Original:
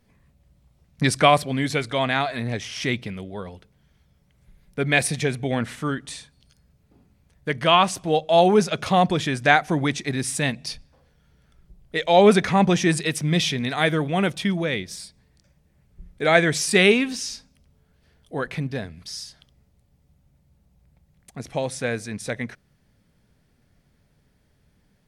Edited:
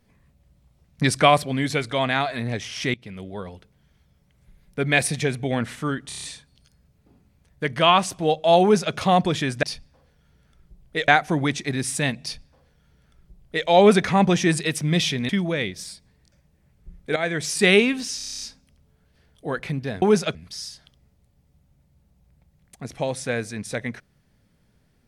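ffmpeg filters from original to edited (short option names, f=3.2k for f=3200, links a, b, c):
-filter_complex "[0:a]asplit=21[a][b][c][d][e][f][g][h][i][j][k][l][m][n][o][p][q][r][s][t][u];[a]atrim=end=2.94,asetpts=PTS-STARTPTS,afade=t=out:st=2.936:d=0.004:c=hsin:silence=0.0749894[v];[b]atrim=start=2.94:end=6.112,asetpts=PTS-STARTPTS,afade=t=in:d=0.33:silence=0.0749894[w];[c]atrim=start=6.078:end=6.112[x];[d]atrim=start=6.078:end=6.112[y];[e]atrim=start=6.078:end=6.112[z];[f]atrim=start=6.078:end=6.112[aa];[g]atrim=start=6.078:end=9.482[ab];[h]atrim=start=10.618:end=12.072[ac];[i]atrim=start=9.478:end=13.692[ad];[j]atrim=start=14.408:end=16.28,asetpts=PTS-STARTPTS,afade=t=out:st=1.868:d=0.004:c=hsin:silence=0.237137[ae];[k]atrim=start=16.28:end=17.322,asetpts=PTS-STARTPTS,afade=t=in:d=0.51:silence=0.237137[af];[l]atrim=start=17.288:end=17.322[ag];[m]atrim=start=17.288:end=17.322[ah];[n]atrim=start=17.288:end=17.322[ai];[o]atrim=start=17.288:end=17.322[aj];[p]atrim=start=17.288:end=17.322[ak];[q]atrim=start=17.288:end=17.322[al];[r]atrim=start=17.288:end=17.322[am];[s]atrim=start=17.288:end=18.902[an];[t]atrim=start=8.468:end=8.802[ao];[u]atrim=start=18.898[ap];[v][w]concat=n=2:v=0:a=1[aq];[aq][x]acrossfade=d=0.004:c1=hsin:c2=hsin[ar];[ar][y]acrossfade=d=0.004:c1=hsin:c2=hsin[as];[as][z]acrossfade=d=0.004:c1=hsin:c2=hsin[at];[at][aa]acrossfade=d=0.004:c1=hsin:c2=hsin[au];[au][ab]acrossfade=d=0.004:c1=hsin:c2=hsin[av];[av][ac]acrossfade=d=0.004:c1=hsin:c2=hsin[aw];[aw][ad]acrossfade=d=0.004:c1=hsin:c2=hsin[ax];[ae][af]concat=n=2:v=0:a=1[ay];[ax][ay]acrossfade=d=0.004:c1=hsin:c2=hsin[az];[az][ag]acrossfade=d=0.004:c1=hsin:c2=hsin[ba];[ba][ah]acrossfade=d=0.004:c1=hsin:c2=hsin[bb];[bb][ai]acrossfade=d=0.004:c1=hsin:c2=hsin[bc];[bc][aj]acrossfade=d=0.004:c1=hsin:c2=hsin[bd];[bd][ak]acrossfade=d=0.004:c1=hsin:c2=hsin[be];[be][al]acrossfade=d=0.004:c1=hsin:c2=hsin[bf];[bf][am]acrossfade=d=0.004:c1=hsin:c2=hsin[bg];[bg][an]acrossfade=d=0.004:c1=hsin:c2=hsin[bh];[bh][ao]acrossfade=d=0.004:c1=hsin:c2=hsin[bi];[bi][ap]acrossfade=d=0.004:c1=hsin:c2=hsin"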